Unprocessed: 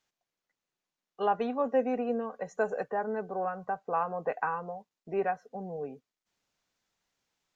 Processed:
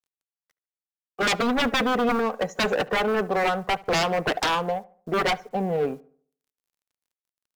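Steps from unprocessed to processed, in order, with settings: G.711 law mismatch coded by A; sine folder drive 16 dB, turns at -16 dBFS; darkening echo 72 ms, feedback 42%, low-pass 2000 Hz, level -20.5 dB; gain -2.5 dB

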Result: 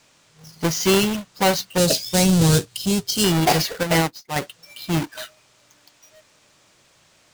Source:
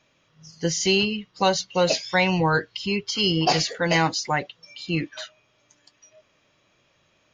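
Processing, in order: half-waves squared off; 1.78–3.24 graphic EQ 125/1000/2000/4000/8000 Hz +8/-7/-9/+3/+7 dB; band noise 510–7900 Hz -58 dBFS; 3.83–4.36 upward expander 2.5:1, over -31 dBFS; gain -1.5 dB

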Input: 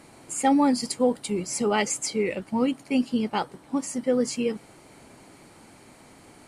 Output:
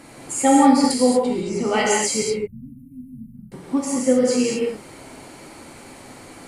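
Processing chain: 2.22–3.52 inverse Chebyshev band-stop 440–6700 Hz, stop band 60 dB; in parallel at -2.5 dB: compressor, threshold -33 dBFS, peak gain reduction 15.5 dB; 1.2–1.66 on the sum: tape spacing loss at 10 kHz 20 dB; non-linear reverb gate 0.26 s flat, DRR -3.5 dB

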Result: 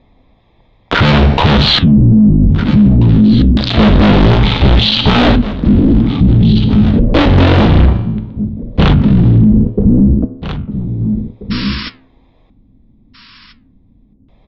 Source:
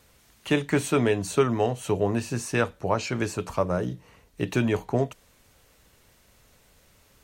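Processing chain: Wiener smoothing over 15 samples; bell 750 Hz -3 dB 0.66 oct; sample leveller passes 5; soft clip -24 dBFS, distortion -9 dB; resonator 75 Hz, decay 0.46 s, harmonics odd, mix 60%; LFO low-pass square 0.56 Hz 460–7200 Hz; painted sound noise, 5.75–5.95, 1900–11000 Hz -53 dBFS; flange 1.2 Hz, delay 3.8 ms, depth 8.6 ms, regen -77%; echo 0.817 s -17 dB; speed mistake 15 ips tape played at 7.5 ips; maximiser +34.5 dB; gain -1 dB

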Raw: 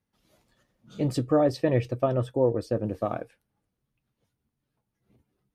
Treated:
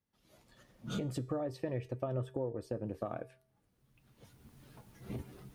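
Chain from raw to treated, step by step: recorder AGC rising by 21 dB/s; dynamic EQ 4800 Hz, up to -6 dB, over -55 dBFS, Q 1.5; compressor 6:1, threshold -26 dBFS, peak gain reduction 9 dB; resonator 130 Hz, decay 0.63 s, harmonics odd, mix 50%; gain -1.5 dB

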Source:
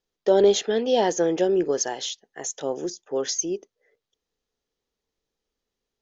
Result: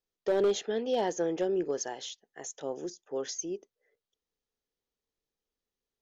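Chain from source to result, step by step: dynamic EQ 4900 Hz, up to -3 dB, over -40 dBFS, Q 0.78; overloaded stage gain 13 dB; gain -8 dB

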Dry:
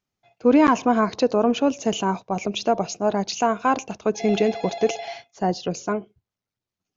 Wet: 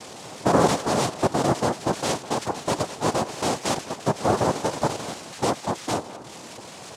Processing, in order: delta modulation 16 kbps, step -33 dBFS; noise vocoder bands 2; speakerphone echo 0.21 s, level -15 dB

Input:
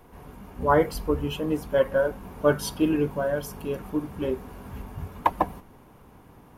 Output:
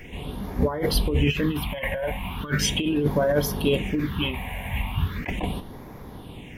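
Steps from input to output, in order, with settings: band shelf 2600 Hz +12.5 dB 1.3 oct; negative-ratio compressor -28 dBFS, ratio -1; phaser stages 6, 0.38 Hz, lowest notch 340–2800 Hz; gain +6.5 dB

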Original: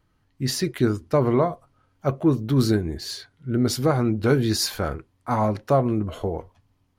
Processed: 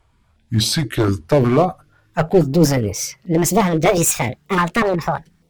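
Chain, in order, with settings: speed glide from 73% -> 181%; one-sided clip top -20.5 dBFS; stepped notch 8.3 Hz 220–1600 Hz; gain +9 dB

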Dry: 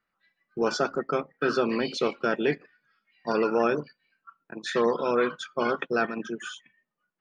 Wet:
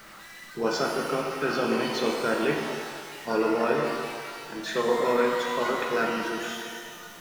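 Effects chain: zero-crossing step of -39.5 dBFS; shimmer reverb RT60 1.9 s, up +12 st, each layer -8 dB, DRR 0 dB; gain -3 dB

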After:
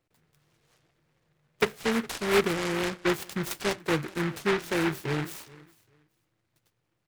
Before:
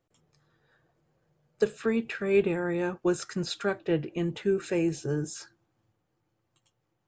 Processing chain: feedback echo 0.412 s, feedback 20%, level -22 dB; noise-modulated delay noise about 1400 Hz, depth 0.24 ms

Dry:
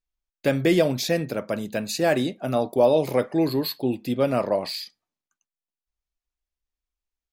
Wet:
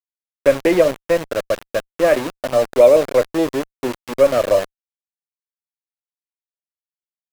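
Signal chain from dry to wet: speaker cabinet 210–2500 Hz, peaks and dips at 230 Hz -6 dB, 560 Hz +8 dB, 830 Hz -7 dB; sample gate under -26 dBFS; added harmonics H 6 -27 dB, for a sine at -5 dBFS; gain +4 dB

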